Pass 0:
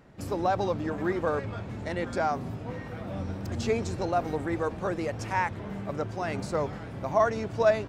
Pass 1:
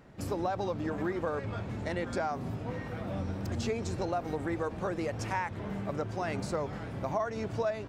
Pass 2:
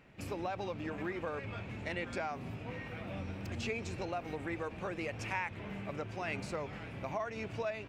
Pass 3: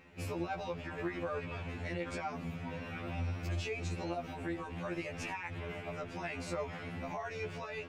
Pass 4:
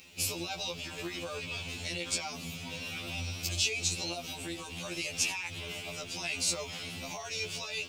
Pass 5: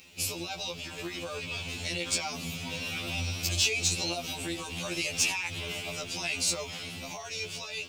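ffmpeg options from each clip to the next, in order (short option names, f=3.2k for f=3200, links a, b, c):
-af "acompressor=threshold=-29dB:ratio=5"
-af "equalizer=f=2.5k:t=o:w=0.72:g=13,volume=-6.5dB"
-af "alimiter=level_in=8.5dB:limit=-24dB:level=0:latency=1:release=42,volume=-8.5dB,afftfilt=real='re*2*eq(mod(b,4),0)':imag='im*2*eq(mod(b,4),0)':win_size=2048:overlap=0.75,volume=5dB"
-af "aexciter=amount=10.9:drive=4.8:freq=2.7k,volume=-2.5dB"
-filter_complex "[0:a]dynaudnorm=f=200:g=17:m=4dB,asplit=2[a][b];[b]aeval=exprs='0.0794*(abs(mod(val(0)/0.0794+3,4)-2)-1)':c=same,volume=-10dB[c];[a][c]amix=inputs=2:normalize=0,volume=-2dB"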